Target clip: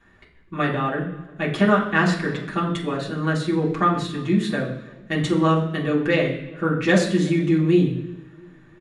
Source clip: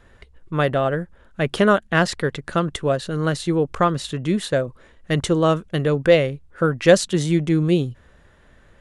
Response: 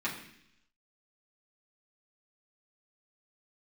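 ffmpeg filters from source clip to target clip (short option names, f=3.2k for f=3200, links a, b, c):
-filter_complex "[0:a]asplit=2[a][b];[b]adelay=343,lowpass=f=1.6k:p=1,volume=-23dB,asplit=2[c][d];[d]adelay=343,lowpass=f=1.6k:p=1,volume=0.49,asplit=2[e][f];[f]adelay=343,lowpass=f=1.6k:p=1,volume=0.49[g];[a][c][e][g]amix=inputs=4:normalize=0[h];[1:a]atrim=start_sample=2205[i];[h][i]afir=irnorm=-1:irlink=0,volume=-6.5dB"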